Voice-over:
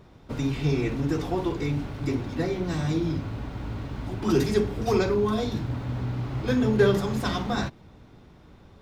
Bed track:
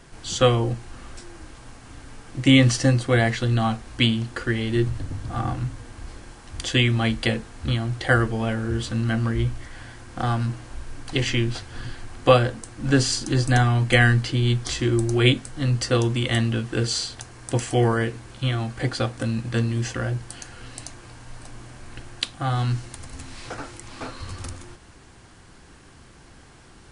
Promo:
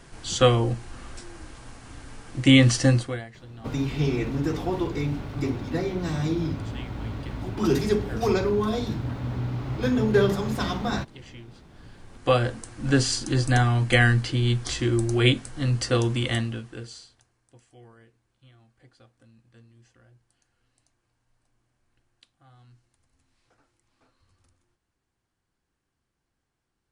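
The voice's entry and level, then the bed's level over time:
3.35 s, 0.0 dB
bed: 0:02.99 −0.5 dB
0:03.28 −23 dB
0:11.57 −23 dB
0:12.47 −2 dB
0:16.28 −2 dB
0:17.49 −31.5 dB

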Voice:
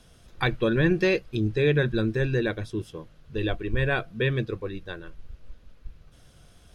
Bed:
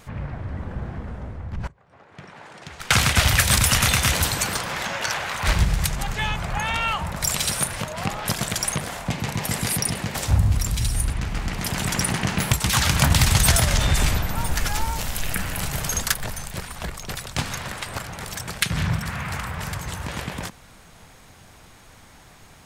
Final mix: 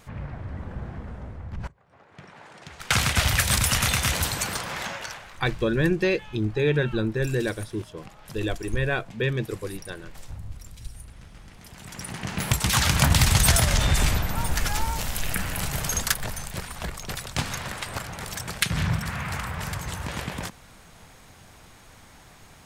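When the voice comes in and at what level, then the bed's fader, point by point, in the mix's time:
5.00 s, −0.5 dB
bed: 0:04.88 −4 dB
0:05.38 −20.5 dB
0:11.71 −20.5 dB
0:12.57 −1.5 dB

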